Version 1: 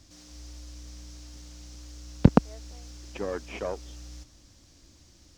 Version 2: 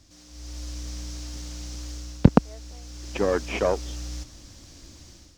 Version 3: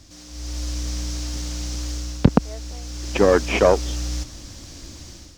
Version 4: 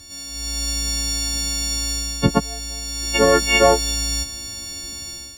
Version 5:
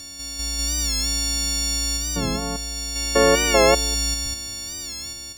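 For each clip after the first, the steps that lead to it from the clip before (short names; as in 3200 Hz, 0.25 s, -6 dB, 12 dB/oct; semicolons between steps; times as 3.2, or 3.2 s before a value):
AGC gain up to 10.5 dB; gain -1 dB
maximiser +9 dB; gain -1 dB
frequency quantiser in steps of 4 st
stepped spectrum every 0.2 s; record warp 45 rpm, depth 100 cents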